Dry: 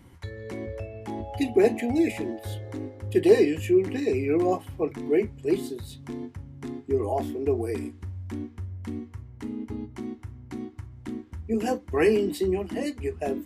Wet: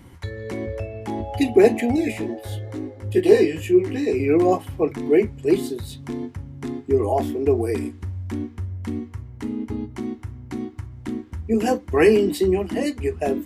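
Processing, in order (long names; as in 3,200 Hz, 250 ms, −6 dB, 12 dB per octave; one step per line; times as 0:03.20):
0:01.96–0:04.20: chorus effect 2.3 Hz, delay 16 ms, depth 2.7 ms
level +6 dB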